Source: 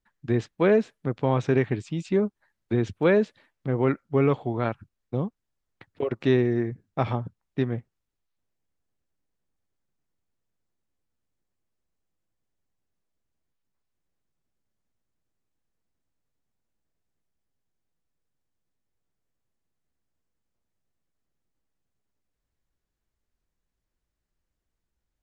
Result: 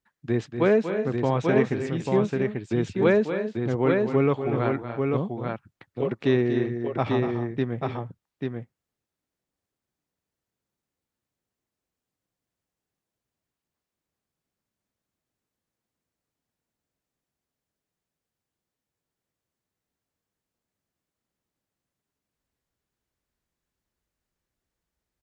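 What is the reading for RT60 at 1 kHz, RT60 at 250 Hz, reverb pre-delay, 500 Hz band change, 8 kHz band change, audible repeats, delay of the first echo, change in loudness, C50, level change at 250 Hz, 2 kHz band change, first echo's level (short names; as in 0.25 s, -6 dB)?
none, none, none, +1.5 dB, n/a, 3, 0.239 s, +1.0 dB, none, +1.5 dB, +2.0 dB, -9.5 dB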